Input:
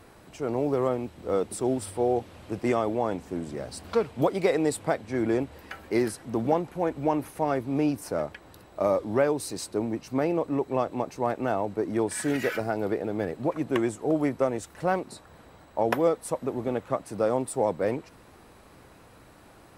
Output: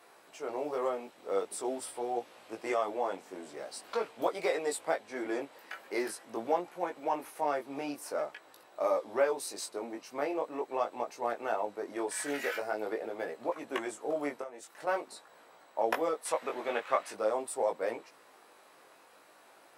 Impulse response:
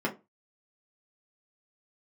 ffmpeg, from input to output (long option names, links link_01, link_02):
-filter_complex "[0:a]highpass=520,asettb=1/sr,asplit=3[link_01][link_02][link_03];[link_01]atrim=end=14.414[link_04];[link_02]atrim=start=14.41:end=14.87,asetpts=PTS-STARTPTS,afade=type=in:duration=0.004:curve=qsin,afade=type=out:start_time=0.456:duration=0.004:curve=qsin,acompressor=threshold=-36dB:ratio=8[link_05];[link_03]atrim=start=14.866[link_06];[link_04][link_05]acrossfade=duration=0.004:curve1=hsin:curve2=qsin[link_07];[link_07][link_06]acrossfade=duration=0.004:curve1=qsin:curve2=hsin,asettb=1/sr,asplit=3[link_08][link_09][link_10];[link_08]atrim=end=16.254[link_11];[link_09]atrim=start=16.25:end=17.13,asetpts=PTS-STARTPTS,afade=type=in:duration=0.004:curve=qsin,afade=type=out:start_time=0.876:duration=0.004:curve=qsin,equalizer=frequency=2300:width_type=o:width=2.5:gain=11.5[link_12];[link_10]atrim=start=17.126[link_13];[link_11][link_12]acrossfade=duration=0.004:curve1=hsin:curve2=qsin[link_14];[link_14][link_13]acrossfade=duration=0.004:curve1=qsin:curve2=hsin,flanger=delay=17:depth=4.1:speed=0.45"